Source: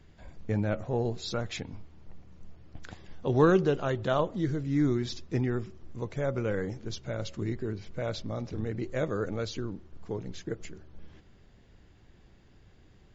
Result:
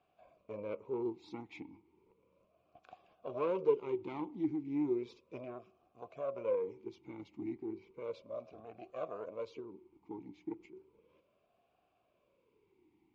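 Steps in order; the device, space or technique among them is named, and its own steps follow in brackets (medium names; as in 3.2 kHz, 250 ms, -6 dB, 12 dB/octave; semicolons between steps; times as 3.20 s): talk box (valve stage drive 23 dB, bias 0.7; talking filter a-u 0.34 Hz); trim +5.5 dB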